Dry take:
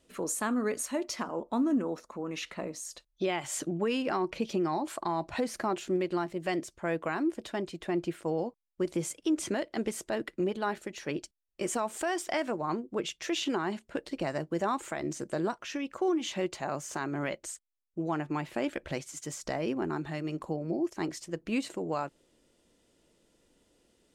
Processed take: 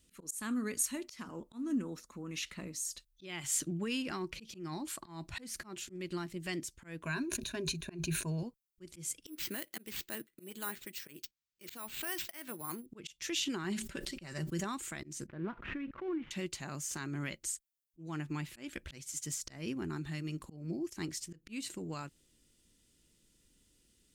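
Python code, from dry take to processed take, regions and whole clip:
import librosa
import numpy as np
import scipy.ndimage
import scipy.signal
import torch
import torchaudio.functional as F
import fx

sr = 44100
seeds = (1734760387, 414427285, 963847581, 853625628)

y = fx.chain(x, sr, fx.ripple_eq(per_octave=1.5, db=13),
    fx.sustainer(db_per_s=81.0), at=(7.03, 8.43))
y = fx.chain(y, sr, fx.highpass(hz=390.0, slope=6),
    fx.resample_bad(factor=4, down='none', up='hold'),
    fx.dynamic_eq(hz=6900.0, q=1.1, threshold_db=-51.0, ratio=4.0, max_db=-4), at=(9.26, 12.86))
y = fx.chain(y, sr, fx.low_shelf(hz=140.0, db=-3.5),
    fx.comb(ms=5.2, depth=0.51),
    fx.sustainer(db_per_s=81.0), at=(13.64, 14.64))
y = fx.chain(y, sr, fx.dead_time(dead_ms=0.11),
    fx.lowpass(hz=2100.0, slope=24),
    fx.pre_swell(db_per_s=74.0), at=(15.27, 16.31))
y = fx.tone_stack(y, sr, knobs='6-0-2')
y = fx.auto_swell(y, sr, attack_ms=191.0)
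y = fx.high_shelf(y, sr, hz=10000.0, db=8.0)
y = y * 10.0 ** (15.0 / 20.0)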